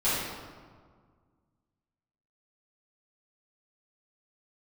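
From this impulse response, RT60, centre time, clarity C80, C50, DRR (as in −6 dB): 1.7 s, 103 ms, 1.0 dB, −2.0 dB, −13.5 dB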